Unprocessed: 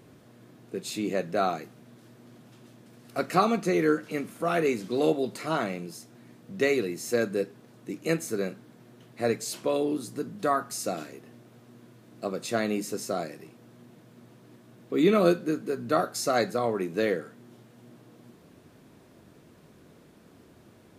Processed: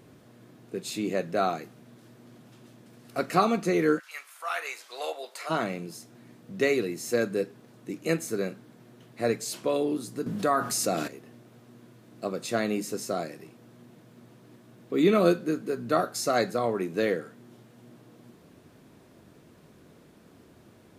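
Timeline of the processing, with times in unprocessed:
0:03.98–0:05.49: high-pass filter 1,100 Hz → 540 Hz 24 dB per octave
0:10.26–0:11.08: envelope flattener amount 50%

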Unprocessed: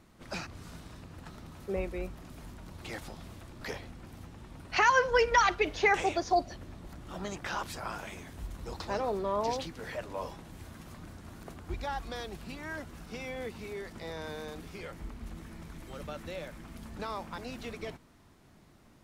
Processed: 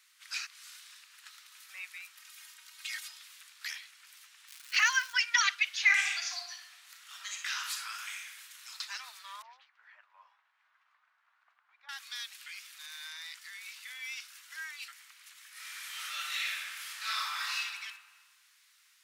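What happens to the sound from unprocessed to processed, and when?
0:02.17–0:03.19: comb filter 3.2 ms
0:04.47–0:05.12: surface crackle 330 per second −40 dBFS
0:05.83–0:08.70: thrown reverb, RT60 0.93 s, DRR 1.5 dB
0:09.42–0:11.89: Chebyshev low-pass filter 760 Hz
0:12.46–0:14.88: reverse
0:15.51–0:17.54: thrown reverb, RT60 1.6 s, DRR −11 dB
whole clip: Bessel high-pass filter 2,400 Hz, order 6; level +7 dB

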